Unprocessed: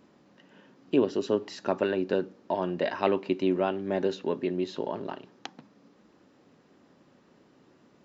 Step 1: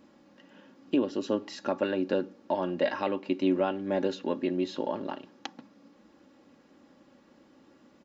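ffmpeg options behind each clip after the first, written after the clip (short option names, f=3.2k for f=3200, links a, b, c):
-af "aecho=1:1:3.6:0.51,alimiter=limit=-15.5dB:level=0:latency=1:release=487"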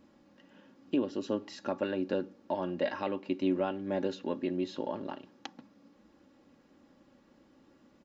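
-af "lowshelf=f=92:g=10.5,volume=-4.5dB"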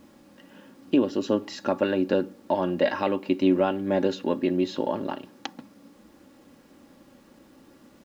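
-af "acrusher=bits=11:mix=0:aa=0.000001,volume=8.5dB"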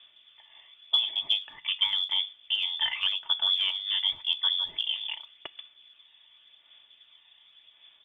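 -af "lowpass=f=3.1k:t=q:w=0.5098,lowpass=f=3.1k:t=q:w=0.6013,lowpass=f=3.1k:t=q:w=0.9,lowpass=f=3.1k:t=q:w=2.563,afreqshift=-3700,aphaser=in_gain=1:out_gain=1:delay=1.1:decay=0.34:speed=0.89:type=sinusoidal,volume=-4.5dB"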